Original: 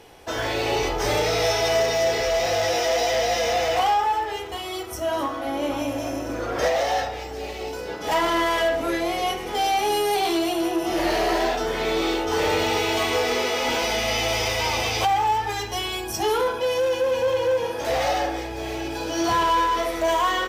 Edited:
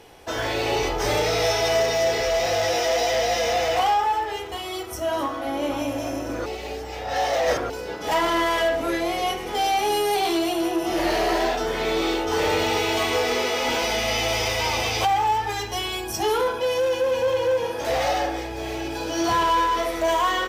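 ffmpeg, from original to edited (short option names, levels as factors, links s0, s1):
-filter_complex "[0:a]asplit=3[s0][s1][s2];[s0]atrim=end=6.462[s3];[s1]atrim=start=6.458:end=7.702,asetpts=PTS-STARTPTS,areverse[s4];[s2]atrim=start=7.698[s5];[s3][s4]acrossfade=d=0.004:c1=hsin:c2=hsin[s6];[s6][s5]acrossfade=d=0.004:c1=hsin:c2=hsin"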